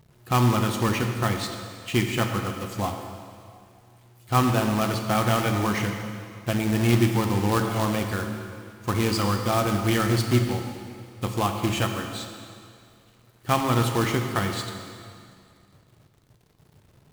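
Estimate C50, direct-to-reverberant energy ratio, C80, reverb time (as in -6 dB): 5.5 dB, 4.0 dB, 6.5 dB, 2.2 s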